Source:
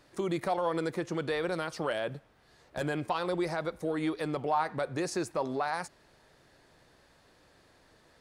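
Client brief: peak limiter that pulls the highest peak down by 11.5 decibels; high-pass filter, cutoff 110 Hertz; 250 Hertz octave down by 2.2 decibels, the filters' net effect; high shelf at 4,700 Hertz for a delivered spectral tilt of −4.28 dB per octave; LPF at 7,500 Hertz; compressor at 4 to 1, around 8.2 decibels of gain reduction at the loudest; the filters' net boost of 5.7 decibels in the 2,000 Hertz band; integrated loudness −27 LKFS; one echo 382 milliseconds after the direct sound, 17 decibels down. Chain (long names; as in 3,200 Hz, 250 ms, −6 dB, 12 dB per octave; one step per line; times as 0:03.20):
high-pass filter 110 Hz
low-pass filter 7,500 Hz
parametric band 250 Hz −3.5 dB
parametric band 2,000 Hz +6.5 dB
high-shelf EQ 4,700 Hz +6.5 dB
downward compressor 4 to 1, threshold −34 dBFS
brickwall limiter −32 dBFS
single-tap delay 382 ms −17 dB
level +16 dB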